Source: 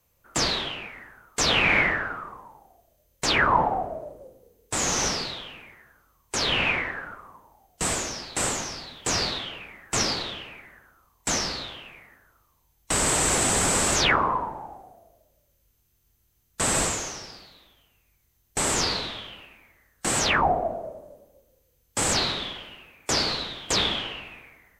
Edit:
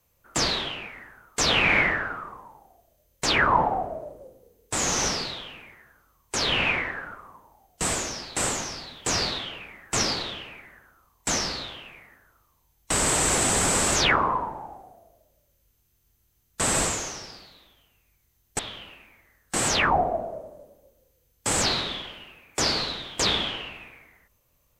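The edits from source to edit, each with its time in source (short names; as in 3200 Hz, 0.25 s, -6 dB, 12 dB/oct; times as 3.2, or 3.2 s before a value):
18.59–19.1 cut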